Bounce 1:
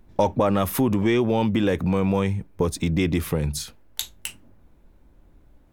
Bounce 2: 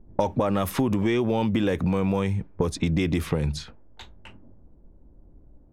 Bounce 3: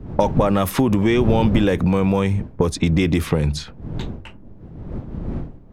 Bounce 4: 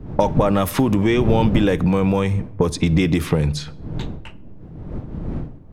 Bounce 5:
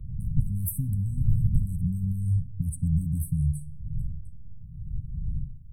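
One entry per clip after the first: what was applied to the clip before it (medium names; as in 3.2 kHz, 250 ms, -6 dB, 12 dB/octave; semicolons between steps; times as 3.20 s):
level-controlled noise filter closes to 540 Hz, open at -18 dBFS; compression, threshold -22 dBFS, peak gain reduction 7 dB; trim +2.5 dB
wind noise 180 Hz -34 dBFS; trim +6 dB
simulated room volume 3800 m³, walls furnished, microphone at 0.47 m
brick-wall FIR band-stop 250–7900 Hz; static phaser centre 1.1 kHz, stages 8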